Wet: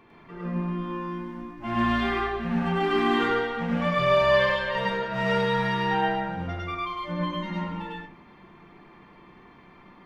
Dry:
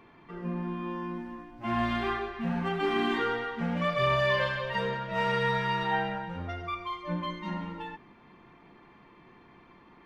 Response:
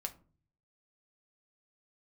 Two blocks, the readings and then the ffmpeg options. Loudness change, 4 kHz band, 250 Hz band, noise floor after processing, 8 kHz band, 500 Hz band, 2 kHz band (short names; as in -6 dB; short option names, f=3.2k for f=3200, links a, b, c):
+4.5 dB, +4.0 dB, +5.0 dB, -52 dBFS, n/a, +5.5 dB, +3.5 dB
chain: -filter_complex "[0:a]asplit=2[a][b];[1:a]atrim=start_sample=2205,adelay=102[c];[b][c]afir=irnorm=-1:irlink=0,volume=3.5dB[d];[a][d]amix=inputs=2:normalize=0"